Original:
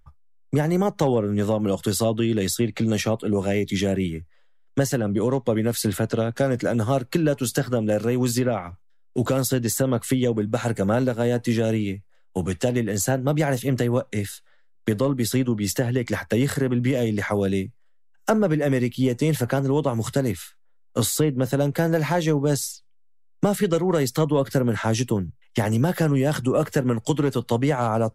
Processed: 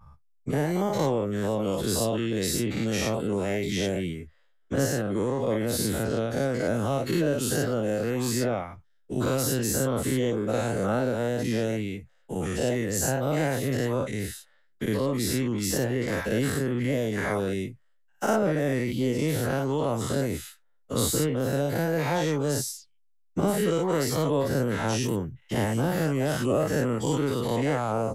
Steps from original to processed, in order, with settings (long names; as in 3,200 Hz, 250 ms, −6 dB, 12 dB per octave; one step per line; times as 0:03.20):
every bin's largest magnitude spread in time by 120 ms
level −8.5 dB